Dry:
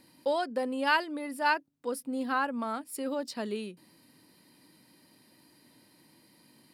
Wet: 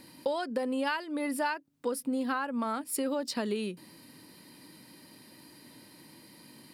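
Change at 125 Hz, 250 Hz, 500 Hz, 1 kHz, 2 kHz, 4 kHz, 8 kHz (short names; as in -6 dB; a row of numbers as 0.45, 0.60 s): n/a, +2.5 dB, 0.0 dB, -4.0 dB, -5.0 dB, -1.5 dB, +5.5 dB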